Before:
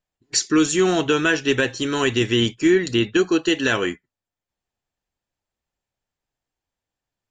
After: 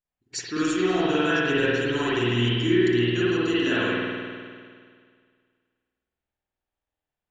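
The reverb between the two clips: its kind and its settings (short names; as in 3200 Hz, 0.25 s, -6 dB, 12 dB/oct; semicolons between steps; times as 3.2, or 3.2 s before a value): spring tank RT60 2 s, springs 50 ms, chirp 60 ms, DRR -9.5 dB; gain -12.5 dB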